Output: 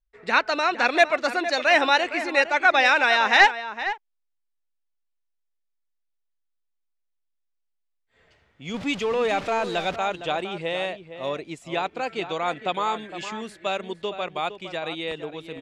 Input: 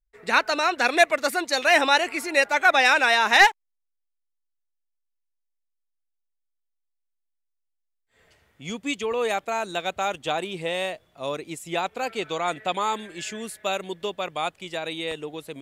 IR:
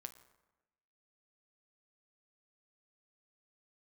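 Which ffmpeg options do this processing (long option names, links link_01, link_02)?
-filter_complex "[0:a]asettb=1/sr,asplit=3[link_01][link_02][link_03];[link_01]atrim=end=8.744[link_04];[link_02]atrim=start=8.74:end=9.96,asetpts=PTS-STARTPTS,afade=type=in:duration=0.004:curve=qsin,afade=type=out:start_time=1.216:duration=0.004:curve=qsin,aeval=exprs='val(0)+0.5*0.0316*sgn(val(0))':channel_layout=same[link_05];[link_03]atrim=start=9.956[link_06];[link_04][link_05]acrossfade=duration=0.004:curve1=hsin:curve2=qsin[link_07];[link_07][link_06]acrossfade=duration=0.004:curve1=qsin:curve2=hsin,lowpass=4800,asplit=2[link_08][link_09];[link_09]adelay=460.6,volume=-11dB,highshelf=frequency=4000:gain=-10.4[link_10];[link_08][link_10]amix=inputs=2:normalize=0"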